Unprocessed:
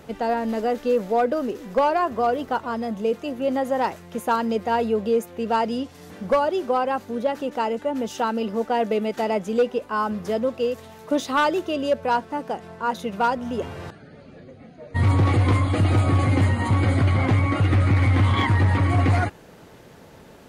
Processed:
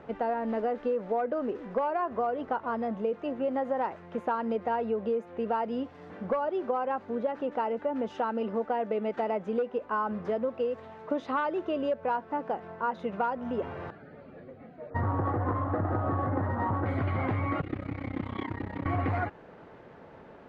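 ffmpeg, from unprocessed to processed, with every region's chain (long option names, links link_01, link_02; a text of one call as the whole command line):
ffmpeg -i in.wav -filter_complex "[0:a]asettb=1/sr,asplit=3[link_01][link_02][link_03];[link_01]atrim=end=14.904[link_04];[link_02]atrim=start=14.9:end=16.86,asetpts=PTS-STARTPTS,afade=type=in:duration=0.004:curve=qsin,afade=type=out:start_time=1.956:duration=0.004:curve=qsin,asuperstop=centerf=4200:order=20:qfactor=0.63,equalizer=frequency=800:width=0.67:gain=4.5,adynamicsmooth=sensitivity=5:basefreq=2200[link_05];[link_03]atrim=start=16.856[link_06];[link_04][link_05]acrossfade=duration=0.004:curve1=hsin:curve2=qsin[link_07];[link_07][link_06]acrossfade=duration=0.004:curve1=qsin:curve2=hsin,asettb=1/sr,asplit=3[link_08][link_09][link_10];[link_08]atrim=end=17.614[link_11];[link_09]atrim=start=17.61:end=18.86,asetpts=PTS-STARTPTS,afade=type=in:duration=0.004:curve=qsin,afade=type=out:start_time=1.246:duration=0.004:curve=qsin,highpass=frequency=130:width=0.5412,highpass=frequency=130:width=1.3066,equalizer=frequency=1200:width_type=o:width=2.2:gain=-11,tremolo=f=32:d=0.919[link_12];[link_10]atrim=start=18.856[link_13];[link_11][link_12]acrossfade=duration=0.004:curve1=hsin:curve2=qsin[link_14];[link_14][link_13]acrossfade=duration=0.004:curve1=qsin:curve2=hsin,lowpass=1700,lowshelf=frequency=250:gain=-8.5,acompressor=threshold=-26dB:ratio=6" out.wav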